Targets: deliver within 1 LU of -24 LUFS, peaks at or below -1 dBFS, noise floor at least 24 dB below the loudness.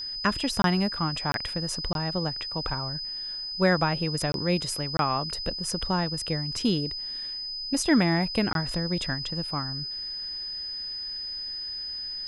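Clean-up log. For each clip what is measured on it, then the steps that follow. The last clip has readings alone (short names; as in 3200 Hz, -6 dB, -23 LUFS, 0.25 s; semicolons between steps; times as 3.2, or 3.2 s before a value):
dropouts 6; longest dropout 22 ms; steady tone 5000 Hz; tone level -32 dBFS; loudness -28.0 LUFS; peak -9.5 dBFS; loudness target -24.0 LUFS
-> interpolate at 0.62/1.32/1.93/4.32/4.97/8.53, 22 ms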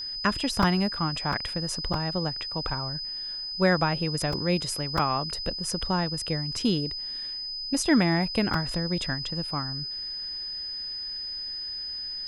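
dropouts 0; steady tone 5000 Hz; tone level -32 dBFS
-> notch 5000 Hz, Q 30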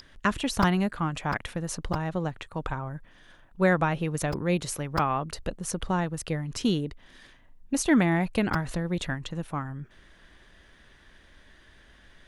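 steady tone none; loudness -28.5 LUFS; peak -10.0 dBFS; loudness target -24.0 LUFS
-> gain +4.5 dB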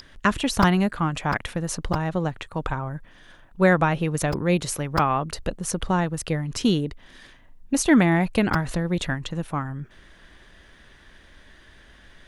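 loudness -24.0 LUFS; peak -5.5 dBFS; noise floor -52 dBFS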